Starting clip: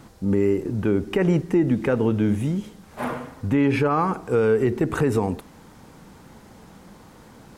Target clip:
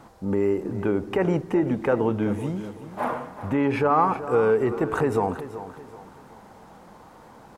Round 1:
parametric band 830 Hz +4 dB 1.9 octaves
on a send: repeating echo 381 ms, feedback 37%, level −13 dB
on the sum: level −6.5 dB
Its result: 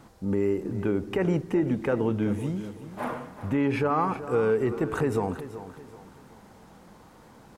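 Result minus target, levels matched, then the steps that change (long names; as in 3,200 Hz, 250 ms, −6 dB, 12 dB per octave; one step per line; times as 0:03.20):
1,000 Hz band −3.0 dB
change: parametric band 830 Hz +11 dB 1.9 octaves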